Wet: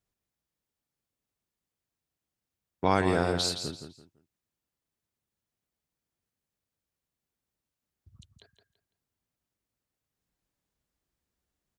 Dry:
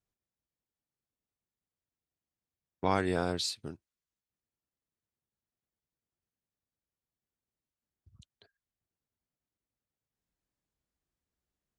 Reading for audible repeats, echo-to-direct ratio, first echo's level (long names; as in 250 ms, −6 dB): 3, −7.5 dB, −8.0 dB